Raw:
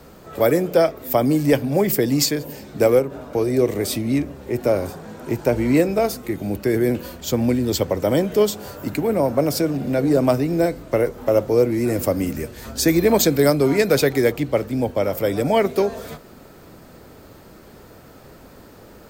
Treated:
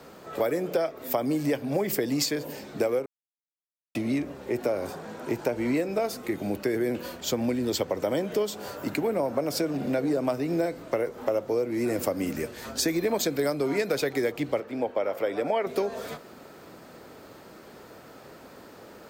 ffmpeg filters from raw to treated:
-filter_complex "[0:a]asettb=1/sr,asplit=3[a][b][c];[a]atrim=end=14.604[d];[b]atrim=start=14.6:end=15.67,asetpts=PTS-STARTPTS,afade=t=in:d=0.004:c=qsin,afade=t=out:st=1.066:d=0.004:c=qsin,bass=f=250:g=-12,treble=f=4k:g=-12[e];[c]atrim=start=15.666[f];[d][e]acrossfade=d=0.004:c1=hsin:c2=qsin[g];[g][f]acrossfade=d=0.004:c1=qsin:c2=hsin,asplit=3[h][i][j];[h]atrim=end=3.06,asetpts=PTS-STARTPTS,afade=t=out:st=3.056:d=0.004:c=hsin[k];[i]atrim=start=3.06:end=3.95,asetpts=PTS-STARTPTS,volume=0[l];[j]atrim=start=3.95,asetpts=PTS-STARTPTS,afade=t=in:d=0.004:c=hsin[m];[k][l][m]concat=n=3:v=0:a=1,highpass=f=310:p=1,highshelf=f=7.9k:g=-7,acompressor=threshold=-23dB:ratio=6"

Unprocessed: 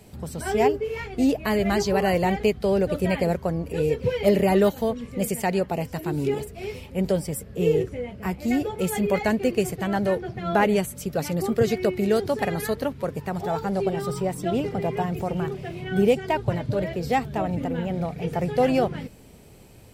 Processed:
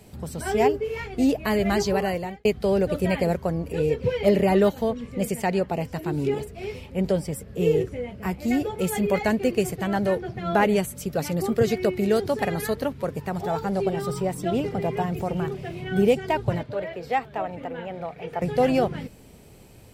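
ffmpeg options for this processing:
-filter_complex "[0:a]asettb=1/sr,asplit=3[a][b][c];[a]atrim=end=3.754[d];[b]atrim=start=3.75:end=7.48,asetpts=PTS-STARTPTS,afade=t=in:d=0.004:c=qsin,afade=t=out:st=3.726:d=0.004:c=qsin,highshelf=f=8.1k:g=-7.5[e];[c]atrim=start=7.476[f];[d][e]acrossfade=d=0.004:c1=hsin:c2=qsin[g];[g][f]acrossfade=d=0.004:c1=qsin:c2=hsin,asettb=1/sr,asplit=3[h][i][j];[h]atrim=end=16.634[k];[i]atrim=start=16.63:end=18.42,asetpts=PTS-STARTPTS,afade=t=in:d=0.004:c=qsin,afade=t=out:st=1.786:d=0.004:c=qsin,acrossover=split=430 3400:gain=0.224 1 0.251[l][m][n];[l][m][n]amix=inputs=3:normalize=0[o];[j]atrim=start=18.416[p];[k][o]acrossfade=d=0.004:c1=hsin:c2=qsin[q];[q][p]acrossfade=d=0.004:c1=qsin:c2=hsin,asplit=2[r][s];[r]atrim=end=2.45,asetpts=PTS-STARTPTS,afade=t=out:st=1.88:d=0.57[t];[s]atrim=start=2.45,asetpts=PTS-STARTPTS,afade=t=in:d=0.004:c=hsin[u];[t][u]concat=n=2:v=0:a=1"

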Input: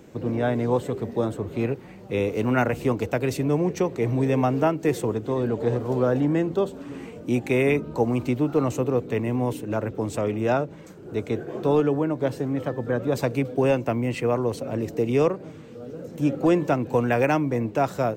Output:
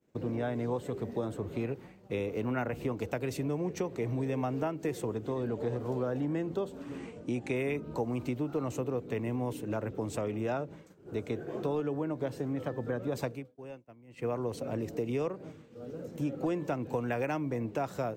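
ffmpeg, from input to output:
-filter_complex "[0:a]asettb=1/sr,asplit=3[a][b][c];[a]atrim=end=2.264[d];[b]atrim=start=2.26:end=2.93,asetpts=PTS-STARTPTS,afade=t=in:d=0.004:c=qsin,afade=t=out:st=0.666:d=0.004:c=qsin,equalizer=f=8.3k:t=o:w=1.9:g=-6[e];[c]atrim=start=2.926[f];[d][e]acrossfade=d=0.004:c1=hsin:c2=qsin[g];[g][f]acrossfade=d=0.004:c1=qsin:c2=hsin,asettb=1/sr,asplit=3[h][i][j];[h]atrim=end=6.984[k];[i]atrim=start=6.98:end=7.56,asetpts=PTS-STARTPTS,afade=t=in:d=0.004:c=qsin,afade=t=out:st=0.576:d=0.004:c=qsin,lowpass=f=10k:w=0.5412,lowpass=f=10k:w=1.3066[l];[j]atrim=start=7.556[m];[k][l]acrossfade=d=0.004:c1=hsin:c2=qsin[n];[n][m]acrossfade=d=0.004:c1=qsin:c2=hsin,asplit=3[o][p][q];[o]atrim=end=13.49,asetpts=PTS-STARTPTS,afade=t=out:st=13.27:d=0.22:c=qua:silence=0.112202[r];[p]atrim=start=13.49:end=14.06,asetpts=PTS-STARTPTS,volume=-19dB[s];[q]atrim=start=14.06,asetpts=PTS-STARTPTS,afade=t=in:d=0.22:c=qua:silence=0.112202[t];[r][s][t]concat=n=3:v=0:a=1,agate=range=-33dB:threshold=-36dB:ratio=3:detection=peak,acompressor=threshold=-26dB:ratio=3,volume=-4.5dB"

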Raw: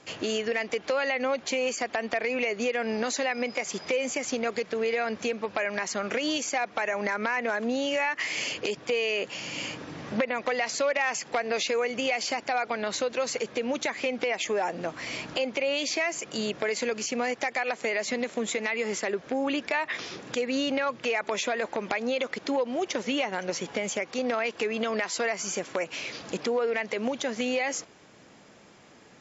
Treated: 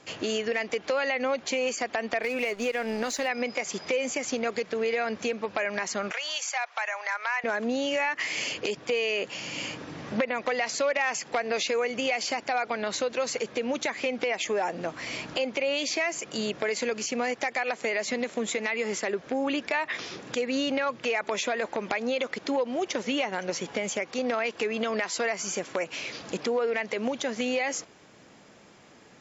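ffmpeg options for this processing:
-filter_complex "[0:a]asplit=3[a][b][c];[a]afade=t=out:st=2.22:d=0.02[d];[b]aeval=exprs='sgn(val(0))*max(abs(val(0))-0.00562,0)':c=same,afade=t=in:st=2.22:d=0.02,afade=t=out:st=3.27:d=0.02[e];[c]afade=t=in:st=3.27:d=0.02[f];[d][e][f]amix=inputs=3:normalize=0,asettb=1/sr,asplit=3[g][h][i];[g]atrim=end=6.114[j];[h]atrim=start=6.11:end=7.44,asetpts=PTS-STARTPTS,afade=t=in:d=0.004:c=qsin,afade=t=out:st=1.326:d=0.004:c=qsin,highpass=f=760:w=0.5412,highpass=f=760:w=1.3066[k];[i]atrim=start=7.436[l];[j][k]acrossfade=d=0.004:c1=hsin:c2=qsin[m];[m][l]acrossfade=d=0.004:c1=qsin:c2=hsin"

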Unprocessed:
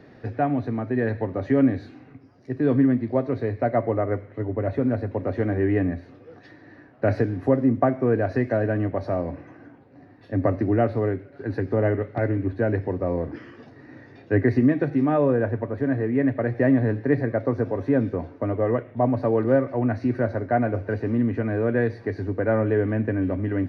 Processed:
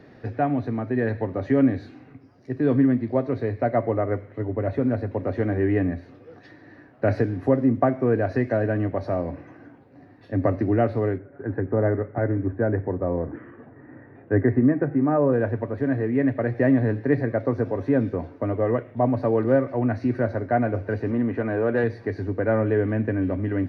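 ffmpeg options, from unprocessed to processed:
-filter_complex "[0:a]asettb=1/sr,asplit=3[a][b][c];[a]atrim=end=11.184[d];[b]atrim=start=11.18:end=15.33,asetpts=PTS-STARTPTS,afade=t=in:d=0.004:c=qsin,afade=t=out:st=4.146:d=0.004:c=qsin,lowpass=f=1.8k:w=0.5412,lowpass=f=1.8k:w=1.3066[e];[c]atrim=start=15.326[f];[d][e]acrossfade=d=0.004:c1=hsin:c2=qsin[g];[g][f]acrossfade=d=0.004:c1=qsin:c2=hsin,asettb=1/sr,asplit=3[h][i][j];[h]atrim=end=21.114[k];[i]atrim=start=21.11:end=21.84,asetpts=PTS-STARTPTS,afade=t=in:d=0.004:c=qsin,afade=t=out:st=0.726:d=0.004:c=qsin,asplit=2[l][m];[m]highpass=f=720:p=1,volume=12dB,asoftclip=type=tanh:threshold=-10.5dB[n];[l][n]amix=inputs=2:normalize=0,lowpass=f=1.2k:p=1,volume=-6dB[o];[j]atrim=start=21.836[p];[k][o]acrossfade=d=0.004:c1=hsin:c2=qsin[q];[q][p]acrossfade=d=0.004:c1=qsin:c2=hsin"

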